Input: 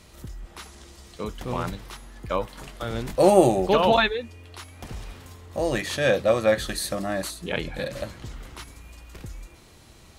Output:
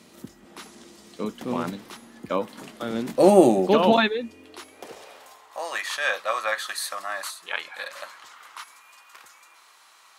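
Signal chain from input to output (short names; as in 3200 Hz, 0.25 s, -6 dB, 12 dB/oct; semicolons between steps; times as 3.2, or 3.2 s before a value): high-pass sweep 230 Hz -> 1100 Hz, 4.31–5.68; gain -1 dB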